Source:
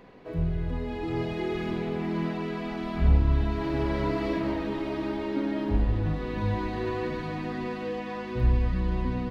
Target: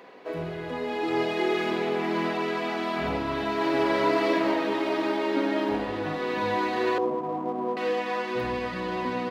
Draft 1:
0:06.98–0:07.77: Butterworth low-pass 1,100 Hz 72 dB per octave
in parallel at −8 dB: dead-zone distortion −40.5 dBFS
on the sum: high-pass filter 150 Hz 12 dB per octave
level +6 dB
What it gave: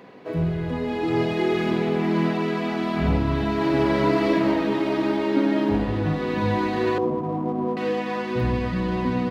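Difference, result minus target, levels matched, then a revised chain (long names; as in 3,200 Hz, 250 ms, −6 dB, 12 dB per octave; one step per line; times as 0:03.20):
125 Hz band +10.0 dB
0:06.98–0:07.77: Butterworth low-pass 1,100 Hz 72 dB per octave
in parallel at −8 dB: dead-zone distortion −40.5 dBFS
on the sum: high-pass filter 400 Hz 12 dB per octave
level +6 dB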